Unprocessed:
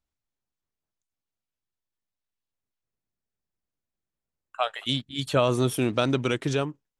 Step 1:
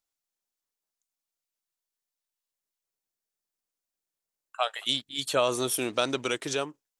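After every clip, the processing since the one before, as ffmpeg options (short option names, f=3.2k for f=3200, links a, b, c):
-af "bass=f=250:g=-15,treble=f=4k:g=8,volume=-1.5dB"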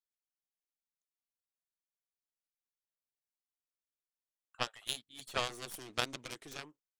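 -af "aeval=exprs='0.316*(cos(1*acos(clip(val(0)/0.316,-1,1)))-cos(1*PI/2))+0.1*(cos(3*acos(clip(val(0)/0.316,-1,1)))-cos(3*PI/2))+0.00501*(cos(4*acos(clip(val(0)/0.316,-1,1)))-cos(4*PI/2))+0.0112*(cos(7*acos(clip(val(0)/0.316,-1,1)))-cos(7*PI/2))+0.00224*(cos(8*acos(clip(val(0)/0.316,-1,1)))-cos(8*PI/2))':c=same,volume=-1dB"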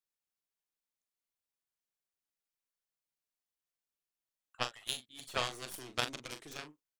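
-filter_complex "[0:a]asplit=2[a][b];[b]adelay=40,volume=-9.5dB[c];[a][c]amix=inputs=2:normalize=0"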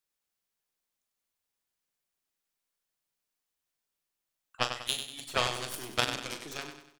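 -af "aecho=1:1:96|192|288|384|480:0.398|0.167|0.0702|0.0295|0.0124,volume=5.5dB"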